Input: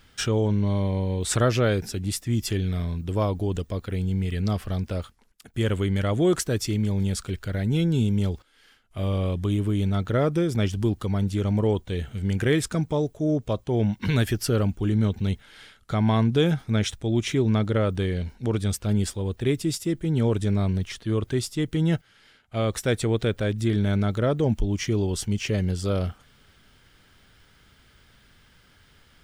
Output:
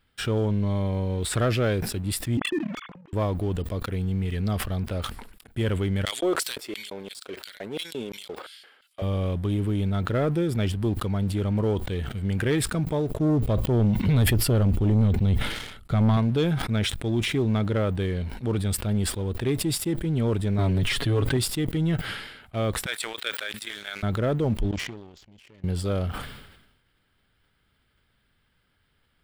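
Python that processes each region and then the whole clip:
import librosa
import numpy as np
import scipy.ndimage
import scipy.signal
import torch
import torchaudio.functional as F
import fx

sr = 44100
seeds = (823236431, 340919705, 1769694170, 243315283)

y = fx.chain(x, sr, fx.sine_speech(),
    fx.lowpass(hz=2800.0, slope=6),
    fx.level_steps(step_db=23), at=(2.37, 3.13))
y = fx.chain(y, sr, fx.high_shelf(hz=4400.0, db=-9.0),
    fx.filter_lfo_highpass(shape='square', hz=2.9, low_hz=490.0, high_hz=4700.0, q=1.5), at=(6.05, 9.02))
y = fx.chain(y, sr, fx.low_shelf(hz=320.0, db=8.0),
    fx.notch(hz=1600.0, q=8.5),
    fx.sustainer(db_per_s=110.0), at=(13.1, 16.17))
y = fx.chain(y, sr, fx.comb(ms=7.2, depth=0.74),
    fx.env_flatten(amount_pct=70), at=(20.58, 21.37))
y = fx.chain(y, sr, fx.highpass(hz=1500.0, slope=12),
    fx.transient(attack_db=11, sustain_db=7), at=(22.86, 24.03))
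y = fx.chain(y, sr, fx.low_shelf(hz=150.0, db=-7.0),
    fx.level_steps(step_db=23),
    fx.resample_bad(factor=3, down='none', up='filtered'), at=(24.71, 25.64))
y = fx.peak_eq(y, sr, hz=6200.0, db=-14.0, octaves=0.43)
y = fx.leveller(y, sr, passes=2)
y = fx.sustainer(y, sr, db_per_s=56.0)
y = y * 10.0 ** (-8.5 / 20.0)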